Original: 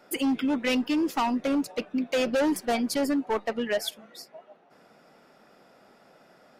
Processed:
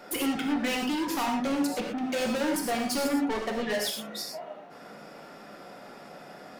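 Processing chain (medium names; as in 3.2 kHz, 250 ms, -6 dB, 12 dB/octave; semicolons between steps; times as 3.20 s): in parallel at 0 dB: compression, threshold -34 dBFS, peak gain reduction 11 dB; on the sum: saturation -30.5 dBFS, distortion -8 dB; gated-style reverb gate 140 ms flat, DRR 0.5 dB; trim +2 dB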